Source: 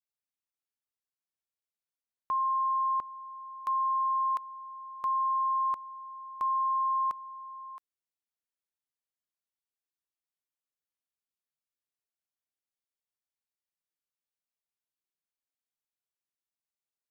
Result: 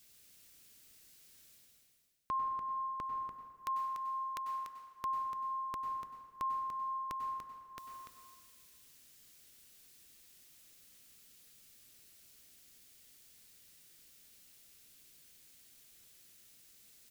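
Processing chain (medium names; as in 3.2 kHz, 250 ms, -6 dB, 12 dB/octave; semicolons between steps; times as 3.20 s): peaking EQ 910 Hz -14.5 dB 1.7 oct; reverse; upward compressor, threshold -50 dBFS; reverse; delay 291 ms -8 dB; plate-style reverb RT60 1.5 s, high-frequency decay 0.65×, pre-delay 85 ms, DRR 4.5 dB; trim +7.5 dB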